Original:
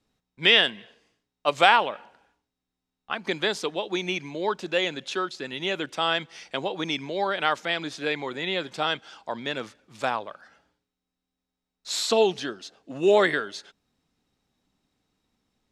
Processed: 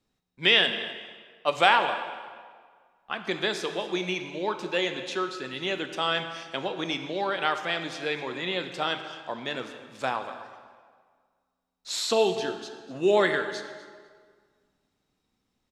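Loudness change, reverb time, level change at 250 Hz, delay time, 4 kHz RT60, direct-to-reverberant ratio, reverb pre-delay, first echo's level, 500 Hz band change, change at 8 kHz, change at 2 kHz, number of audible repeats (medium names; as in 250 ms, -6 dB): -2.0 dB, 1.8 s, -1.0 dB, 247 ms, 1.3 s, 6.5 dB, 5 ms, -17.5 dB, -2.0 dB, -2.0 dB, -1.5 dB, 1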